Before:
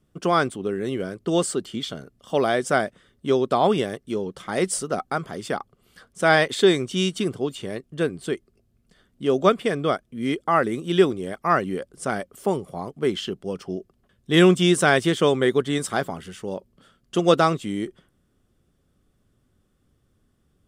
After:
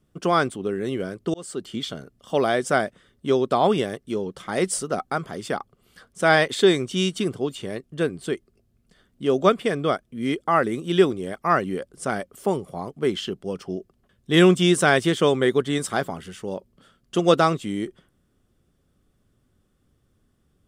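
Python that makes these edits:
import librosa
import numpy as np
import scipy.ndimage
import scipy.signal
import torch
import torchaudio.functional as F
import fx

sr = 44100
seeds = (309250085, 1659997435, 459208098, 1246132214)

y = fx.edit(x, sr, fx.fade_in_span(start_s=1.34, length_s=0.4), tone=tone)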